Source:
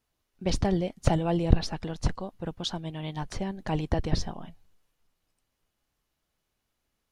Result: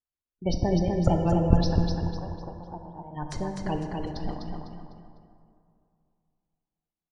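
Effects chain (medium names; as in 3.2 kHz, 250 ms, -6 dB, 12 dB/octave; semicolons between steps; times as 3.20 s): gate -43 dBFS, range -22 dB; spectral gate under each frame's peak -25 dB strong; 1.76–3.13 s: four-pole ladder low-pass 980 Hz, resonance 65%; 3.78–4.27 s: compressor with a negative ratio -37 dBFS, ratio -1; feedback delay 251 ms, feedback 34%, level -4.5 dB; plate-style reverb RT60 2.5 s, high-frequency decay 0.45×, DRR 5 dB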